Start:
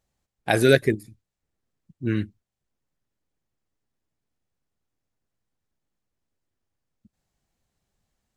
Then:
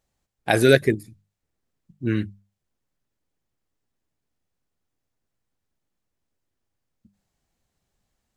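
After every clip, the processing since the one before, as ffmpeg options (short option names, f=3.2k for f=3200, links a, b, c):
-af "bandreject=f=50:t=h:w=6,bandreject=f=100:t=h:w=6,bandreject=f=150:t=h:w=6,bandreject=f=200:t=h:w=6,volume=1.5dB"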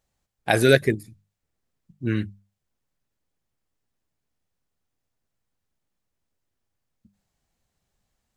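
-af "equalizer=f=320:w=1.5:g=-2.5"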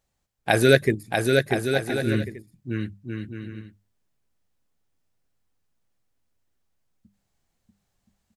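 -af "aecho=1:1:640|1024|1254|1393|1476:0.631|0.398|0.251|0.158|0.1"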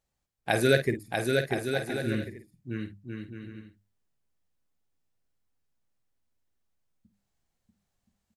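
-filter_complex "[0:a]asplit=2[a][b];[b]adelay=50,volume=-10dB[c];[a][c]amix=inputs=2:normalize=0,volume=-6dB"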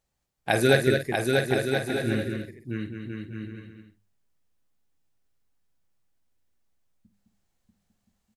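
-af "aecho=1:1:211:0.501,volume=2.5dB"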